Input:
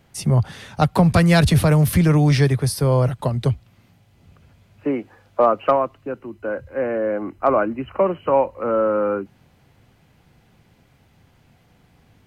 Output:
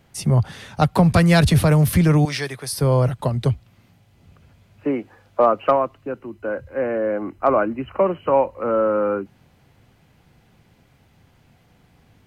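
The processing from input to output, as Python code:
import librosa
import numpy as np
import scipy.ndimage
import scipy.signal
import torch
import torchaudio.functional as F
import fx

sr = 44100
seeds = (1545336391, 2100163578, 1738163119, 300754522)

y = fx.highpass(x, sr, hz=1000.0, slope=6, at=(2.25, 2.73))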